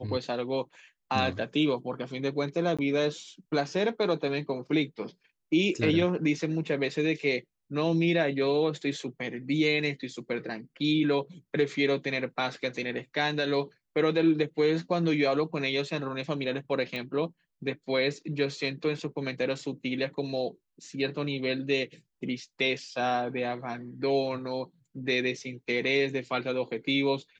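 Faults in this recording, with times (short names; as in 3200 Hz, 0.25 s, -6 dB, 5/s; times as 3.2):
2.77–2.79 gap 16 ms
16.96 pop -22 dBFS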